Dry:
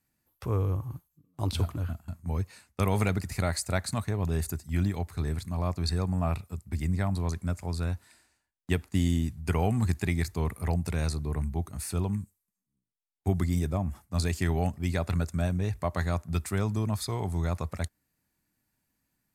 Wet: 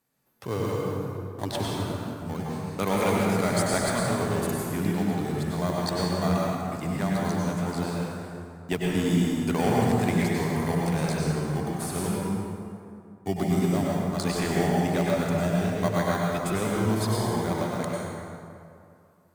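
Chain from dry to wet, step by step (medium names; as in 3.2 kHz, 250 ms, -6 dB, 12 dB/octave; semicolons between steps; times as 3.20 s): high-pass 110 Hz 24 dB/octave; bass shelf 150 Hz -11.5 dB; in parallel at -4.5 dB: sample-rate reducer 2.6 kHz, jitter 0%; on the sum: plate-style reverb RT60 2.5 s, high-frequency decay 0.55×, pre-delay 85 ms, DRR -4 dB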